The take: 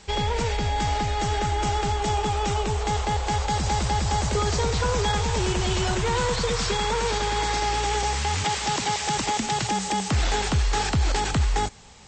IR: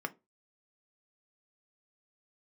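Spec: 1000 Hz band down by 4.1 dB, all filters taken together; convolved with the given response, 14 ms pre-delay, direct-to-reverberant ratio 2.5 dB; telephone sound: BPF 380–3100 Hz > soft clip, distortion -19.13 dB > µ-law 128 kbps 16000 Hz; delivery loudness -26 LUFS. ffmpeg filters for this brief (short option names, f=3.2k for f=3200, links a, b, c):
-filter_complex "[0:a]equalizer=f=1k:t=o:g=-5,asplit=2[a][b];[1:a]atrim=start_sample=2205,adelay=14[c];[b][c]afir=irnorm=-1:irlink=0,volume=-5.5dB[d];[a][d]amix=inputs=2:normalize=0,highpass=380,lowpass=3.1k,asoftclip=threshold=-21.5dB,volume=4.5dB" -ar 16000 -c:a pcm_mulaw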